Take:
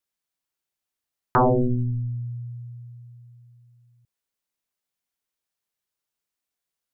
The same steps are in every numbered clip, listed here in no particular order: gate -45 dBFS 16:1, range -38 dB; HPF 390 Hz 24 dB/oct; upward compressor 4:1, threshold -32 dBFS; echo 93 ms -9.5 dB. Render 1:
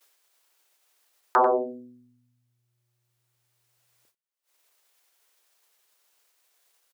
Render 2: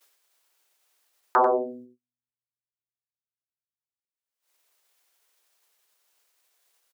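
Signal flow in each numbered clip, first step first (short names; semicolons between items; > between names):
echo > upward compressor > gate > HPF; upward compressor > HPF > gate > echo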